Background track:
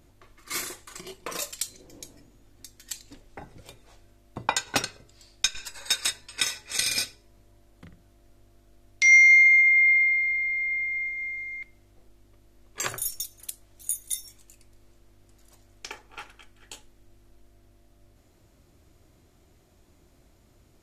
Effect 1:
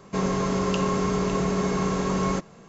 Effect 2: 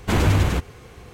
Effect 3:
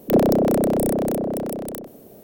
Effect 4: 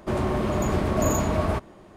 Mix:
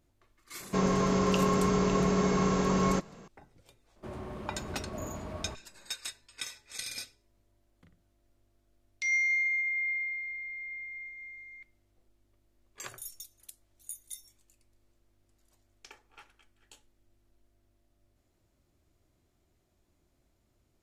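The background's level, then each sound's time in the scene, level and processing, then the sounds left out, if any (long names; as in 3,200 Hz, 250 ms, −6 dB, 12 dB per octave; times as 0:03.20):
background track −13 dB
0:00.60: mix in 1 −2 dB
0:03.96: mix in 4 −16.5 dB
not used: 2, 3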